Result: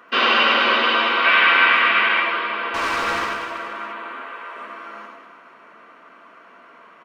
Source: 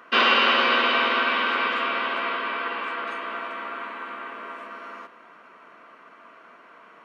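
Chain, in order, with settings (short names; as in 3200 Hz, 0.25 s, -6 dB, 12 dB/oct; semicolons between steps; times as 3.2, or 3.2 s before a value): 1.24–2.2 bell 2100 Hz +10.5 dB 1.3 oct; 2.74–3.25 sample leveller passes 3; 4.12–4.56 HPF 380 Hz 24 dB/oct; flange 0.79 Hz, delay 9.7 ms, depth 4.5 ms, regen -49%; reverse bouncing-ball echo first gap 90 ms, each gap 1.2×, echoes 5; gain +4.5 dB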